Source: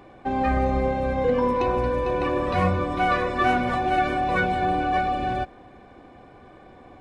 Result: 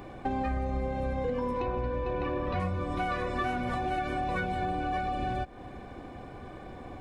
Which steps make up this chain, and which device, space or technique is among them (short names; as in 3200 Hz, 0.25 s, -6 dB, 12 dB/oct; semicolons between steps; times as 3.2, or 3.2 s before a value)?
ASMR close-microphone chain (low shelf 170 Hz +7 dB; compressor 6:1, threshold -31 dBFS, peak gain reduction 16 dB; high shelf 7300 Hz +7.5 dB); 1.6–2.6 LPF 3900 Hz 12 dB/oct; gain +2 dB